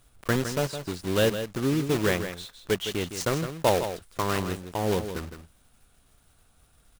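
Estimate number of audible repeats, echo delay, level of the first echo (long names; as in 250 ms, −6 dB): 1, 161 ms, −9.5 dB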